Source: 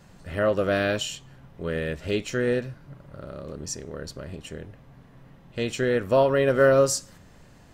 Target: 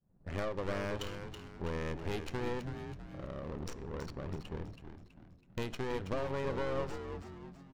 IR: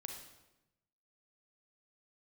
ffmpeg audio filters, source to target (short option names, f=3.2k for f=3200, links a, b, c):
-filter_complex "[0:a]aemphasis=mode=production:type=50fm,agate=range=-33dB:threshold=-39dB:ratio=3:detection=peak,equalizer=f=4.4k:t=o:w=0.4:g=3.5,acompressor=threshold=-28dB:ratio=10,aeval=exprs='clip(val(0),-1,0.00794)':c=same,adynamicsmooth=sensitivity=7:basefreq=590,asplit=6[a][b][c][d][e][f];[b]adelay=326,afreqshift=-90,volume=-8dB[g];[c]adelay=652,afreqshift=-180,volume=-15.1dB[h];[d]adelay=978,afreqshift=-270,volume=-22.3dB[i];[e]adelay=1304,afreqshift=-360,volume=-29.4dB[j];[f]adelay=1630,afreqshift=-450,volume=-36.5dB[k];[a][g][h][i][j][k]amix=inputs=6:normalize=0,asplit=2[l][m];[1:a]atrim=start_sample=2205,lowpass=7.7k[n];[m][n]afir=irnorm=-1:irlink=0,volume=-12.5dB[o];[l][o]amix=inputs=2:normalize=0,volume=-2.5dB"